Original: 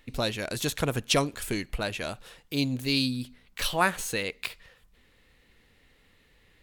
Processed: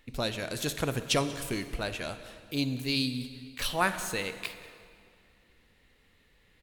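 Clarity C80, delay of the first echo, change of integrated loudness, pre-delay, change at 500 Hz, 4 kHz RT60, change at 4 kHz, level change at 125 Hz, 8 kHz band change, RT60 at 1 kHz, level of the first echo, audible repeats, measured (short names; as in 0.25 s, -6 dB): 11.5 dB, 0.186 s, -2.5 dB, 17 ms, -2.5 dB, 1.8 s, -2.5 dB, -2.5 dB, -2.5 dB, 2.3 s, -21.0 dB, 1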